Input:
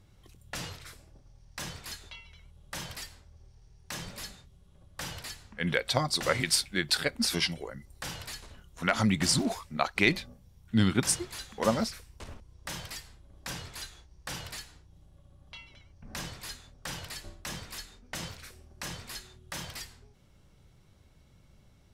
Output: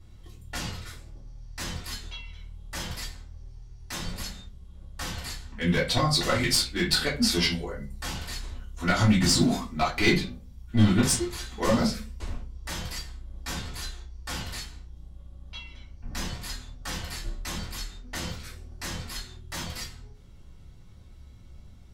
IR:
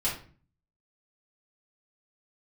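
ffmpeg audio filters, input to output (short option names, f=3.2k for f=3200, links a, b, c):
-filter_complex "[0:a]aeval=exprs='clip(val(0),-1,0.0891)':c=same[a];[1:a]atrim=start_sample=2205,asetrate=66150,aresample=44100[b];[a][b]afir=irnorm=-1:irlink=0"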